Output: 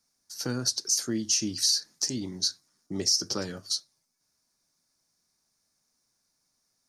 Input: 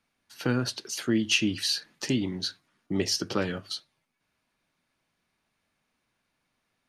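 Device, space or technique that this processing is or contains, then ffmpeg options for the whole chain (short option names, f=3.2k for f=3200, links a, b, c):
over-bright horn tweeter: -af "highshelf=f=4k:t=q:w=3:g=11.5,alimiter=limit=-9dB:level=0:latency=1:release=87,volume=-5dB"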